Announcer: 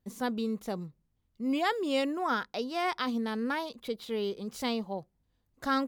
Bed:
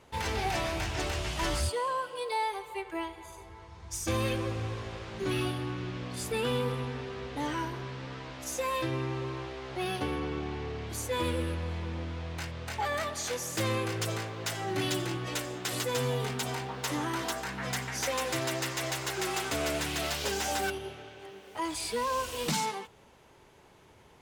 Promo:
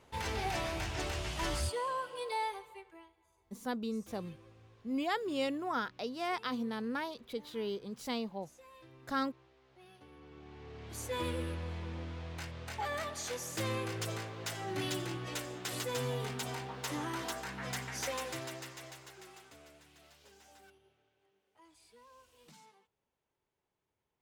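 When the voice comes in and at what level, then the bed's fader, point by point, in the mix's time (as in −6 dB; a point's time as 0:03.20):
3.45 s, −5.0 dB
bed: 0:02.47 −4.5 dB
0:03.16 −25.5 dB
0:10.04 −25.5 dB
0:11.05 −5.5 dB
0:18.08 −5.5 dB
0:19.82 −29 dB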